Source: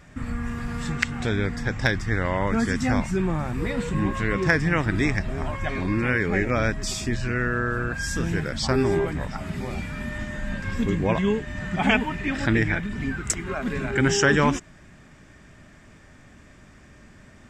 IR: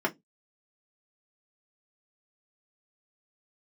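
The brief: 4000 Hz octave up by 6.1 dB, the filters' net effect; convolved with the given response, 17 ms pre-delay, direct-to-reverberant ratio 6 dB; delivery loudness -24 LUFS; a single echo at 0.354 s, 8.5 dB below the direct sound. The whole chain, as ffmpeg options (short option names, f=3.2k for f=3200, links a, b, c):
-filter_complex "[0:a]equalizer=f=4k:t=o:g=8.5,aecho=1:1:354:0.376,asplit=2[a][b];[1:a]atrim=start_sample=2205,adelay=17[c];[b][c]afir=irnorm=-1:irlink=0,volume=-16dB[d];[a][d]amix=inputs=2:normalize=0,volume=-1.5dB"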